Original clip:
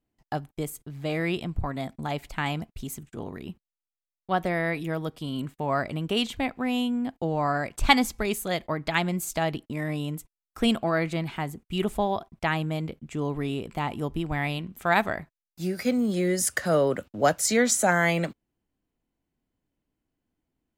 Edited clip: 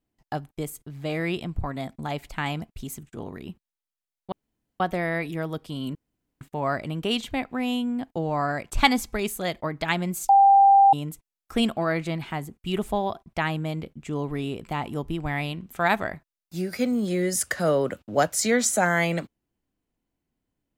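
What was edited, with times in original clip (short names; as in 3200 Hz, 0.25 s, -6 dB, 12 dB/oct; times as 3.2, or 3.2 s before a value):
4.32 insert room tone 0.48 s
5.47 insert room tone 0.46 s
9.35–9.99 bleep 791 Hz -11.5 dBFS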